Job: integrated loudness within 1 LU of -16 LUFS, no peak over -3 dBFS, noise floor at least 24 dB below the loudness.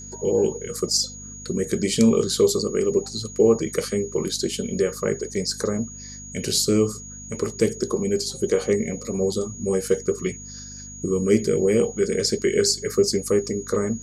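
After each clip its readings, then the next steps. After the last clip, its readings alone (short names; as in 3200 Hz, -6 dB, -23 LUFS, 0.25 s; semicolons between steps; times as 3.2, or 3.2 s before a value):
hum 50 Hz; harmonics up to 250 Hz; hum level -41 dBFS; steady tone 6700 Hz; tone level -38 dBFS; loudness -23.0 LUFS; peak -5.0 dBFS; loudness target -16.0 LUFS
-> de-hum 50 Hz, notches 5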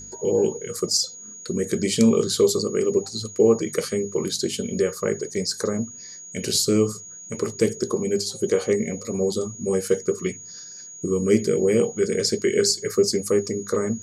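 hum none; steady tone 6700 Hz; tone level -38 dBFS
-> notch 6700 Hz, Q 30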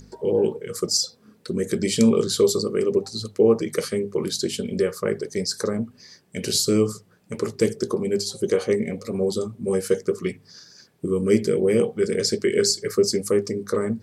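steady tone none; loudness -23.0 LUFS; peak -5.0 dBFS; loudness target -16.0 LUFS
-> gain +7 dB; limiter -3 dBFS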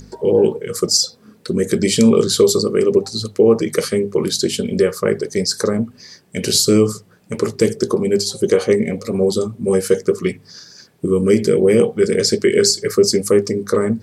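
loudness -16.5 LUFS; peak -3.0 dBFS; noise floor -50 dBFS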